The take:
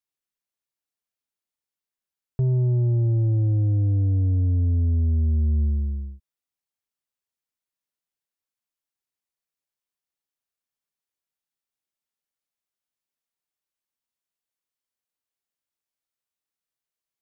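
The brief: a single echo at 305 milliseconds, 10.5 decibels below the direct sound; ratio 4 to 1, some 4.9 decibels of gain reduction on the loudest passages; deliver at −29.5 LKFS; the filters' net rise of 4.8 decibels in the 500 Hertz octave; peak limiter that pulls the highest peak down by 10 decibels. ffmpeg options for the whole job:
ffmpeg -i in.wav -af "equalizer=frequency=500:width_type=o:gain=7.5,acompressor=threshold=-25dB:ratio=4,alimiter=level_in=3dB:limit=-24dB:level=0:latency=1,volume=-3dB,aecho=1:1:305:0.299,volume=1dB" out.wav

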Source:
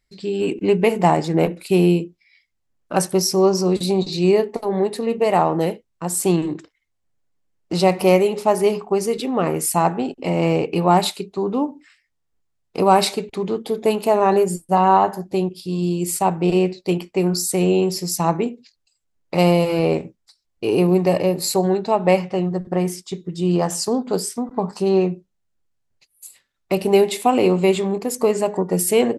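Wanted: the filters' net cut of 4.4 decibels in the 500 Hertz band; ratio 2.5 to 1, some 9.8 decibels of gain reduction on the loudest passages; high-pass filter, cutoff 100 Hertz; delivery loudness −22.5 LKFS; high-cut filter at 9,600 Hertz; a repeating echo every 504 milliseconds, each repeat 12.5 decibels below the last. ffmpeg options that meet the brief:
ffmpeg -i in.wav -af "highpass=100,lowpass=9600,equalizer=frequency=500:width_type=o:gain=-6,acompressor=threshold=-27dB:ratio=2.5,aecho=1:1:504|1008|1512:0.237|0.0569|0.0137,volume=6.5dB" out.wav

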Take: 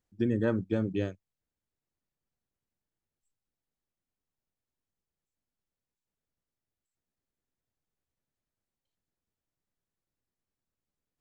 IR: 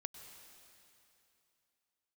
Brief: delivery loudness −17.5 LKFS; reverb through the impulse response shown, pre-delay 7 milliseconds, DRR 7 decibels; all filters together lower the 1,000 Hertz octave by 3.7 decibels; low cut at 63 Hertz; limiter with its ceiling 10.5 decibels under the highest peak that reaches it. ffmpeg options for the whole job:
-filter_complex "[0:a]highpass=63,equalizer=frequency=1000:width_type=o:gain=-5,alimiter=level_in=3dB:limit=-24dB:level=0:latency=1,volume=-3dB,asplit=2[link_01][link_02];[1:a]atrim=start_sample=2205,adelay=7[link_03];[link_02][link_03]afir=irnorm=-1:irlink=0,volume=-3.5dB[link_04];[link_01][link_04]amix=inputs=2:normalize=0,volume=20dB"

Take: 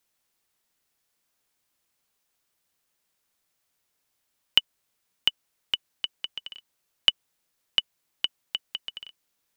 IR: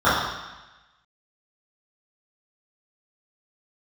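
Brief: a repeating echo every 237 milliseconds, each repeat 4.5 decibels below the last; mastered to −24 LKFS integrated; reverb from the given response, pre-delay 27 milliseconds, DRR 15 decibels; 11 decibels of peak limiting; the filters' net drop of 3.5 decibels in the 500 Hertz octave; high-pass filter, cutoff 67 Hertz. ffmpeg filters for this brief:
-filter_complex "[0:a]highpass=67,equalizer=frequency=500:width_type=o:gain=-4.5,alimiter=limit=-13.5dB:level=0:latency=1,aecho=1:1:237|474|711|948|1185|1422|1659|1896|2133:0.596|0.357|0.214|0.129|0.0772|0.0463|0.0278|0.0167|0.01,asplit=2[link_01][link_02];[1:a]atrim=start_sample=2205,adelay=27[link_03];[link_02][link_03]afir=irnorm=-1:irlink=0,volume=-39.5dB[link_04];[link_01][link_04]amix=inputs=2:normalize=0,volume=10.5dB"

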